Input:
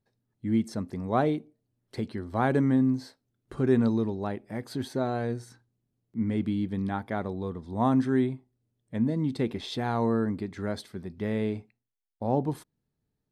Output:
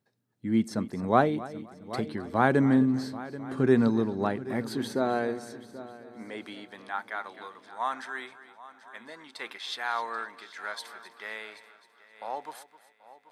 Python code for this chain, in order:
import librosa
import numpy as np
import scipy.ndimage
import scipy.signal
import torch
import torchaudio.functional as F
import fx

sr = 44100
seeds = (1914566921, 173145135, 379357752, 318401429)

y = fx.low_shelf(x, sr, hz=280.0, db=-5.0)
y = fx.filter_sweep_highpass(y, sr, from_hz=130.0, to_hz=1200.0, start_s=4.39, end_s=7.22, q=1.0)
y = fx.peak_eq(y, sr, hz=1500.0, db=3.0, octaves=0.73)
y = fx.echo_heads(y, sr, ms=261, heads='first and third', feedback_pct=47, wet_db=-17)
y = fx.am_noise(y, sr, seeds[0], hz=5.7, depth_pct=60)
y = F.gain(torch.from_numpy(y), 6.5).numpy()